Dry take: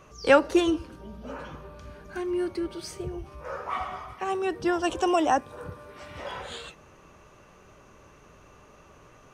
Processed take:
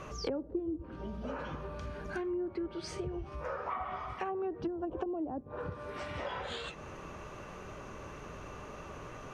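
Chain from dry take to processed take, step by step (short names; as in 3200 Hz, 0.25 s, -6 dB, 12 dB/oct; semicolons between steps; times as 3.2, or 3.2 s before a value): treble ducked by the level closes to 320 Hz, closed at -21.5 dBFS; high shelf 5000 Hz -7 dB; compressor 3:1, threshold -47 dBFS, peak gain reduction 19 dB; gain +8 dB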